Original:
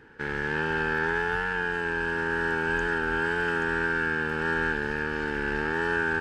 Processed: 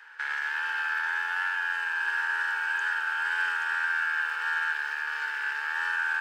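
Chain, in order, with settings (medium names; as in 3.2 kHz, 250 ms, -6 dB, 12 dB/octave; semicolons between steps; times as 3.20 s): peak limiter -23.5 dBFS, peak gain reduction 8 dB; high-pass 1 kHz 24 dB/octave; bit-crushed delay 215 ms, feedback 55%, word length 10-bit, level -12 dB; trim +6.5 dB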